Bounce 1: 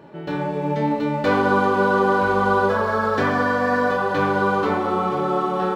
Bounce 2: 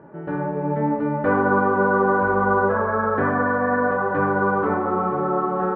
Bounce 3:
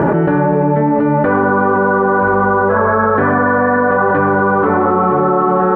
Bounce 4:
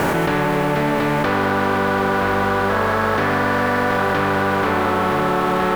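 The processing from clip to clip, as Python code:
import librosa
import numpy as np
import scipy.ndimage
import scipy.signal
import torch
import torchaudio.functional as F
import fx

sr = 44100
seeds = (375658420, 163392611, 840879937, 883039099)

y1 = scipy.signal.sosfilt(scipy.signal.cheby1(3, 1.0, 1600.0, 'lowpass', fs=sr, output='sos'), x)
y2 = fx.env_flatten(y1, sr, amount_pct=100)
y2 = F.gain(torch.from_numpy(y2), 4.0).numpy()
y3 = fx.spec_flatten(y2, sr, power=0.44)
y3 = fx.doppler_dist(y3, sr, depth_ms=0.17)
y3 = F.gain(torch.from_numpy(y3), -5.5).numpy()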